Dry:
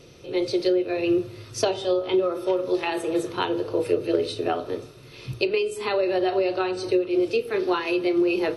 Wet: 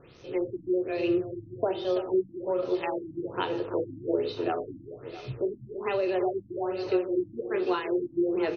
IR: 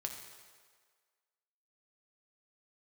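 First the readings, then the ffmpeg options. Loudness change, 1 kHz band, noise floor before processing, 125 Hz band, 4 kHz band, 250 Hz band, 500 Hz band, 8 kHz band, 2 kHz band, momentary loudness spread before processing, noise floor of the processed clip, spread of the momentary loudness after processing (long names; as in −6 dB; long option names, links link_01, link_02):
−5.5 dB, −5.0 dB, −46 dBFS, −4.0 dB, −10.5 dB, −5.0 dB, −5.0 dB, below −25 dB, −8.0 dB, 6 LU, −52 dBFS, 7 LU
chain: -filter_complex "[0:a]acrossover=split=4400[link_01][link_02];[link_02]acompressor=threshold=-54dB:ratio=4:attack=1:release=60[link_03];[link_01][link_03]amix=inputs=2:normalize=0,acrusher=bits=7:mix=0:aa=0.5,aecho=1:1:331|662|993|1324|1655|1986|2317:0.299|0.17|0.097|0.0553|0.0315|0.018|0.0102,asplit=2[link_04][link_05];[1:a]atrim=start_sample=2205[link_06];[link_05][link_06]afir=irnorm=-1:irlink=0,volume=-15dB[link_07];[link_04][link_07]amix=inputs=2:normalize=0,afftfilt=real='re*lt(b*sr/1024,300*pow(6700/300,0.5+0.5*sin(2*PI*1.2*pts/sr)))':imag='im*lt(b*sr/1024,300*pow(6700/300,0.5+0.5*sin(2*PI*1.2*pts/sr)))':win_size=1024:overlap=0.75,volume=-5.5dB"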